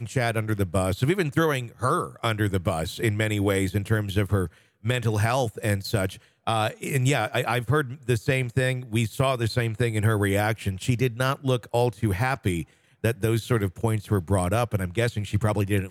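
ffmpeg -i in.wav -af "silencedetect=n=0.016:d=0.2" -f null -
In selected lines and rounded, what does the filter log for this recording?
silence_start: 4.47
silence_end: 4.85 | silence_duration: 0.37
silence_start: 6.15
silence_end: 6.47 | silence_duration: 0.32
silence_start: 12.64
silence_end: 13.04 | silence_duration: 0.40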